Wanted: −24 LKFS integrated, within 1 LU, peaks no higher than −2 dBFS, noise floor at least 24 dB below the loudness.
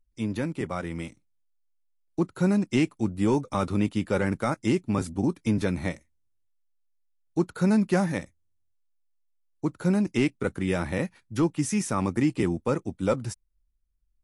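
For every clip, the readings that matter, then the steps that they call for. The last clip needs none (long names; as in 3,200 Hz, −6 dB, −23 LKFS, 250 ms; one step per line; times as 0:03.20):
integrated loudness −27.0 LKFS; sample peak −13.0 dBFS; target loudness −24.0 LKFS
→ level +3 dB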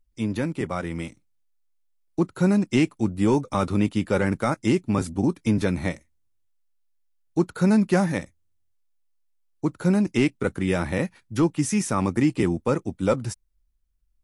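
integrated loudness −24.0 LKFS; sample peak −10.0 dBFS; background noise floor −68 dBFS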